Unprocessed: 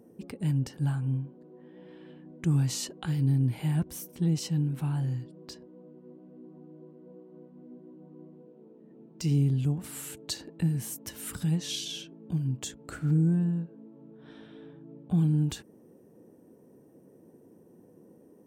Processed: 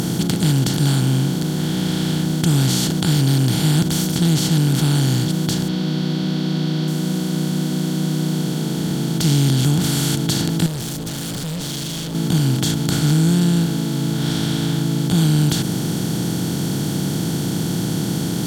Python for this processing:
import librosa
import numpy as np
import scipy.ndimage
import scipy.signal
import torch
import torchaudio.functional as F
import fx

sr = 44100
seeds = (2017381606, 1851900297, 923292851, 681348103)

y = fx.bin_compress(x, sr, power=0.2)
y = fx.high_shelf_res(y, sr, hz=6000.0, db=-10.5, q=1.5, at=(5.68, 6.88))
y = fx.tube_stage(y, sr, drive_db=29.0, bias=0.65, at=(10.66, 12.15))
y = F.gain(torch.from_numpy(y), 5.5).numpy()